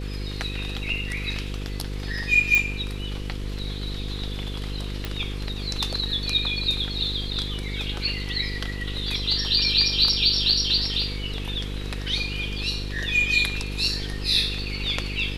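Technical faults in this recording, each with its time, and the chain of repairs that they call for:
mains buzz 50 Hz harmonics 10 −31 dBFS
0:02.55: click −6 dBFS
0:05.05: click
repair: click removal
hum removal 50 Hz, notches 10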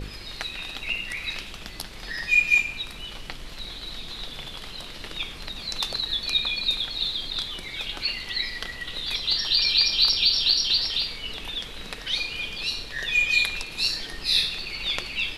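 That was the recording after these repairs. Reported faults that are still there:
none of them is left

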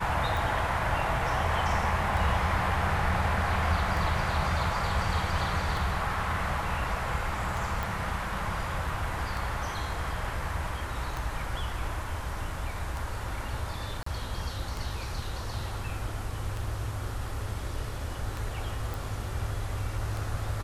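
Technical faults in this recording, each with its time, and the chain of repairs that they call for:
scratch tick 33 1/3 rpm
0:07.83: click
0:14.03–0:14.06: drop-out 34 ms
0:18.94: click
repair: click removal
repair the gap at 0:14.03, 34 ms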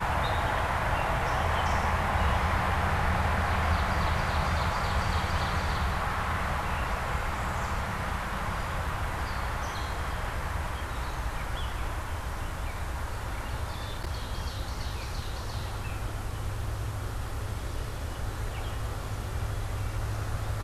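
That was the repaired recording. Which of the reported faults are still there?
none of them is left

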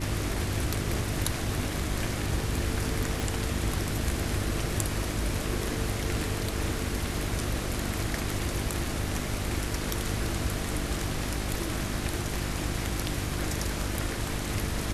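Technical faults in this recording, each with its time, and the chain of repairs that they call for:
mains hum 50 Hz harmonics 7 −35 dBFS
0:03.20: click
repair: click removal
hum removal 50 Hz, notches 7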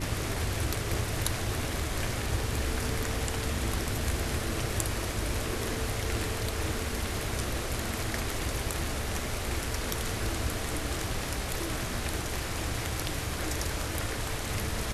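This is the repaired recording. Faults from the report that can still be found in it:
0:03.20: click

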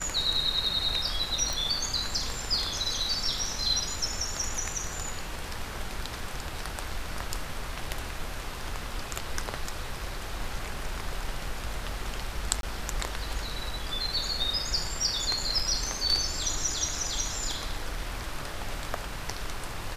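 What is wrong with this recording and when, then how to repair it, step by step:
0:01.53: click
0:12.61–0:12.63: drop-out 22 ms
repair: click removal
repair the gap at 0:12.61, 22 ms

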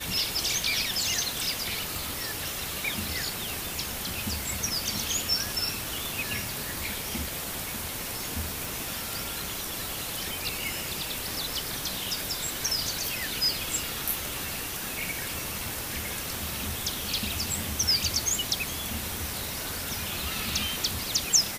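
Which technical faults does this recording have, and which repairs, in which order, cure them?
0:01.95: click
0:08.65: click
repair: click removal

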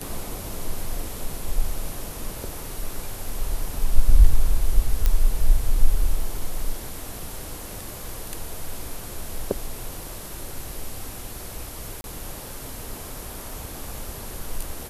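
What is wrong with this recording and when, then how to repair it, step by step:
0:05.06: click −7 dBFS
0:12.01–0:12.04: drop-out 31 ms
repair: click removal
repair the gap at 0:12.01, 31 ms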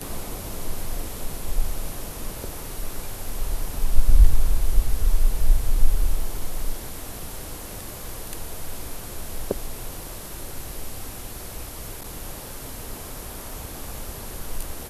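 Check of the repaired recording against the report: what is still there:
none of them is left

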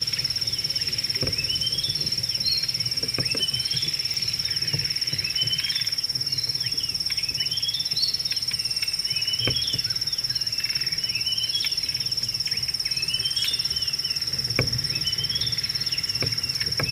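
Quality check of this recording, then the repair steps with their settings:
0:04.14: click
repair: click removal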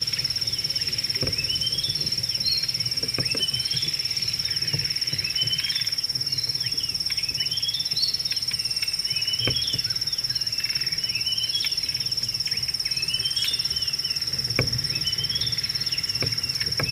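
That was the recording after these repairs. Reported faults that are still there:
none of them is left

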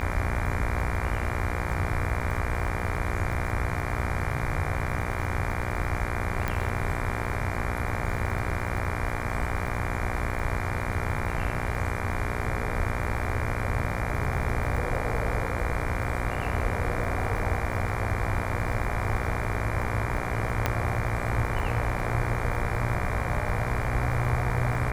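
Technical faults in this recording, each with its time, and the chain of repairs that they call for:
mains buzz 60 Hz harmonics 40 −33 dBFS
surface crackle 44 per second −35 dBFS
0:06.48: click
0:20.66: click −9 dBFS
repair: click removal
hum removal 60 Hz, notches 40

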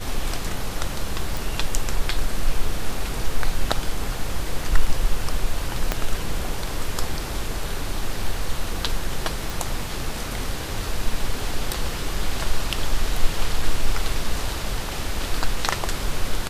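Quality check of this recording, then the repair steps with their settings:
0:01.37: click
0:05.92: click −6 dBFS
0:09.50: click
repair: click removal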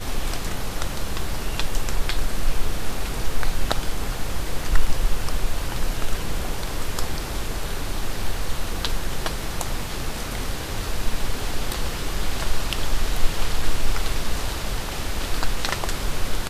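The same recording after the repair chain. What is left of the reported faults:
0:05.92: click

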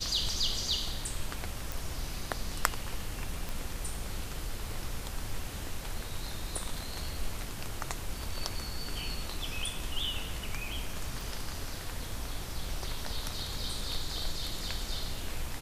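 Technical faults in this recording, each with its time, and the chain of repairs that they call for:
0:01.72: click
0:03.49: click
0:11.21: click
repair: click removal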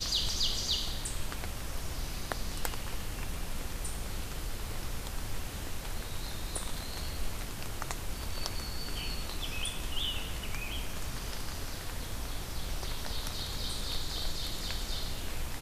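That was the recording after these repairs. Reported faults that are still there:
none of them is left

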